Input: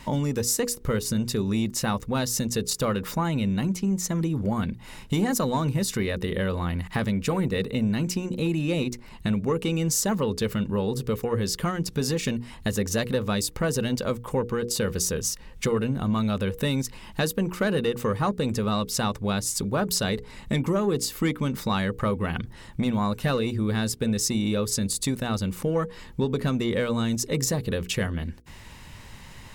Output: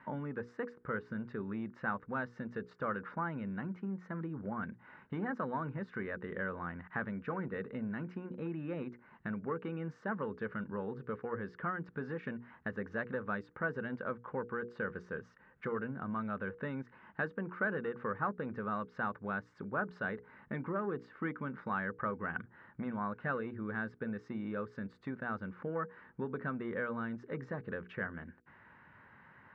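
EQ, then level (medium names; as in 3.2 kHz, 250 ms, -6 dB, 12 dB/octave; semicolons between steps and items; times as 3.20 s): high-pass 150 Hz 12 dB/octave; four-pole ladder low-pass 1.7 kHz, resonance 65%; -2.0 dB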